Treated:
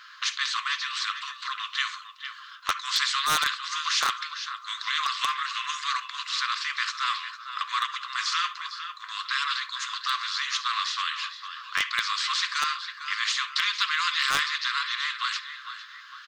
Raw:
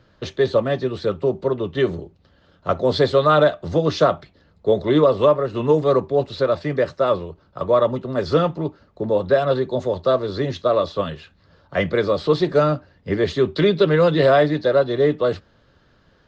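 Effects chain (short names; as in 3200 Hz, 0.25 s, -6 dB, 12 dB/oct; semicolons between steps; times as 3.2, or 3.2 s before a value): brick-wall FIR high-pass 1000 Hz; feedback echo 0.453 s, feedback 32%, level -19 dB; on a send at -21 dB: reverb, pre-delay 49 ms; on the sum: hard clip -15.5 dBFS, distortion -18 dB; spectral compressor 2:1; gain +5.5 dB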